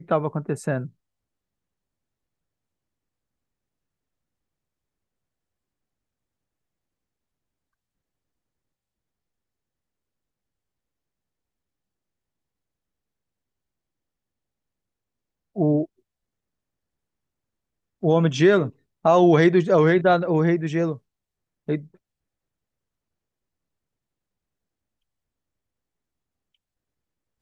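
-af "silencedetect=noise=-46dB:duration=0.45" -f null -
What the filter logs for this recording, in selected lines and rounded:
silence_start: 0.89
silence_end: 15.56 | silence_duration: 14.66
silence_start: 15.85
silence_end: 18.02 | silence_duration: 2.17
silence_start: 20.98
silence_end: 21.68 | silence_duration: 0.70
silence_start: 21.95
silence_end: 27.42 | silence_duration: 5.46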